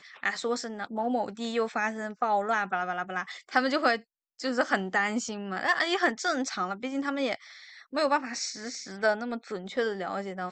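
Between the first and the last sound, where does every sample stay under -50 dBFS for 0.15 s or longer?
4.02–4.39 s

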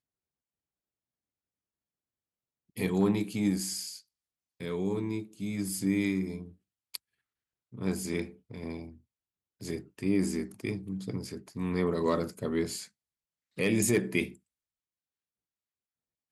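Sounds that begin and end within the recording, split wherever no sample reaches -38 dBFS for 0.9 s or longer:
2.77–14.29 s

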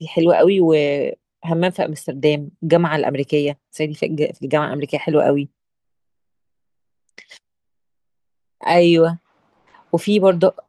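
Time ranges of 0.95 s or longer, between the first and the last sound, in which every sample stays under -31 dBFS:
5.46–7.18 s
7.37–8.61 s

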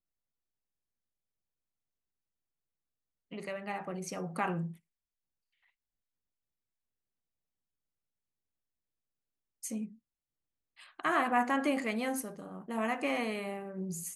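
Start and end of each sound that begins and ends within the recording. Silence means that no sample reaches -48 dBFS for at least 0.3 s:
3.32–4.76 s
9.63–9.92 s

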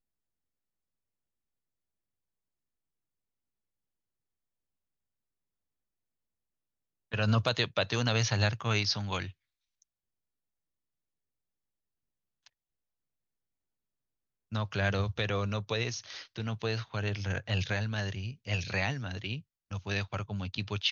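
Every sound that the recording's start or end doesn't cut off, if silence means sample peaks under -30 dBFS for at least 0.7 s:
7.14–9.23 s

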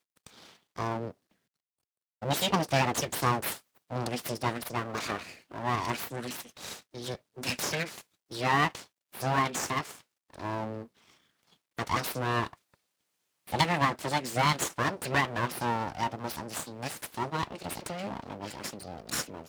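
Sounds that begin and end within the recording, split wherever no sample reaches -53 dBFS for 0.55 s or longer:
2.22–12.74 s

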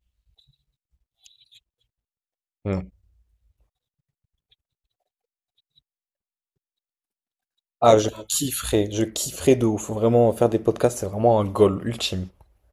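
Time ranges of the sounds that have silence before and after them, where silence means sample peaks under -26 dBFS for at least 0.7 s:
2.66–2.80 s

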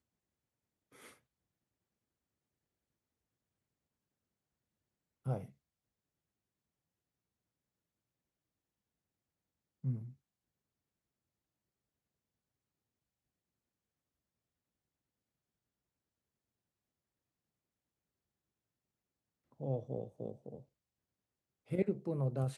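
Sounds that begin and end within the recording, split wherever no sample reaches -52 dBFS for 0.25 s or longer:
0.95–1.13 s
5.26–5.50 s
9.84–10.12 s
19.60–20.62 s

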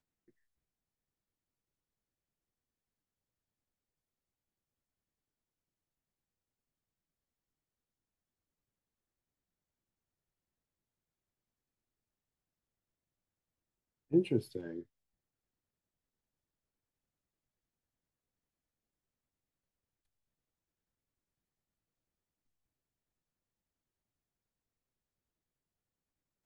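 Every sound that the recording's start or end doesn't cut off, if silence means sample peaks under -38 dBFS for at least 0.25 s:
14.13–14.80 s

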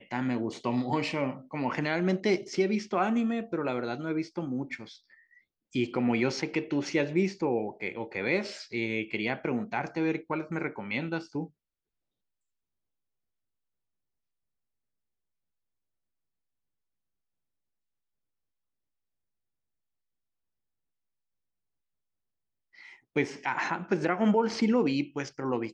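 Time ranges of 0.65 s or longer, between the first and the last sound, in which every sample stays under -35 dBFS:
4.83–5.75 s
11.44–23.16 s

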